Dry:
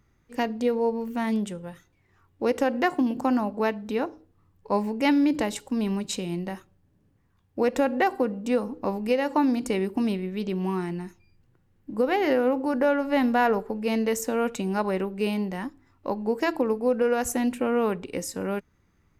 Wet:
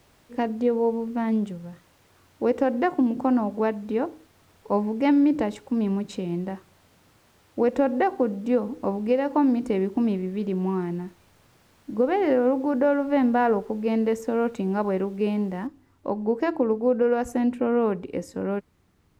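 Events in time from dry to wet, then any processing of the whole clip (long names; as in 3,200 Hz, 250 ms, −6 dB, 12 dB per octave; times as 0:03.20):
0:01.51–0:01.72: gain on a spectral selection 220–6,800 Hz −8 dB
0:15.67: noise floor change −52 dB −64 dB
whole clip: high-pass filter 480 Hz 6 dB per octave; spectral tilt −4.5 dB per octave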